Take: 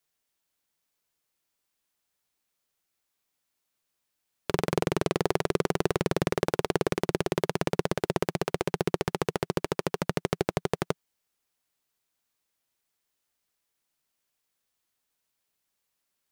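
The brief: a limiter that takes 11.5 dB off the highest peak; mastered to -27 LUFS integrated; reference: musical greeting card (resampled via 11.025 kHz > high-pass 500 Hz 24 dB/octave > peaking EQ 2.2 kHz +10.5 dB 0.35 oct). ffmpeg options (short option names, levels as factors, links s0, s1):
-af "alimiter=limit=0.119:level=0:latency=1,aresample=11025,aresample=44100,highpass=f=500:w=0.5412,highpass=f=500:w=1.3066,equalizer=f=2200:t=o:w=0.35:g=10.5,volume=5.31"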